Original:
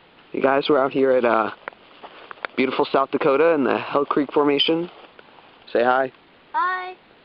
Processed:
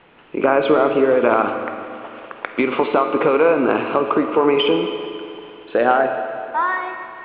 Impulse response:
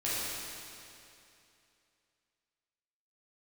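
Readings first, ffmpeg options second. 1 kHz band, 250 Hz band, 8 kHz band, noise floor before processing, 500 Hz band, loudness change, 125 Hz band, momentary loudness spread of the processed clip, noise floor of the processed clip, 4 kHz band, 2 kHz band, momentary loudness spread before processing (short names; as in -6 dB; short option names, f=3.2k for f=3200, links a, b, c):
+3.0 dB, +2.5 dB, n/a, -52 dBFS, +3.0 dB, +2.5 dB, +2.0 dB, 16 LU, -41 dBFS, -2.0 dB, +2.5 dB, 15 LU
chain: -filter_complex "[0:a]lowpass=f=2.9k:w=0.5412,lowpass=f=2.9k:w=1.3066,asplit=2[a][b];[1:a]atrim=start_sample=2205[c];[b][c]afir=irnorm=-1:irlink=0,volume=-11dB[d];[a][d]amix=inputs=2:normalize=0"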